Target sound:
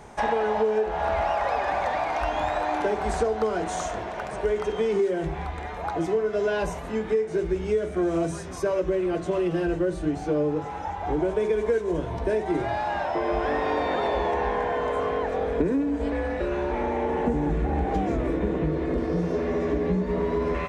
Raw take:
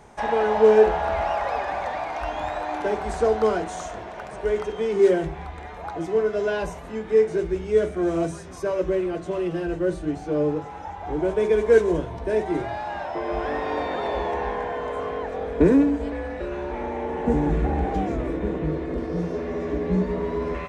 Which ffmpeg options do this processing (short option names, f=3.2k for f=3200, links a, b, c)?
-af "acompressor=threshold=-24dB:ratio=12,volume=3.5dB"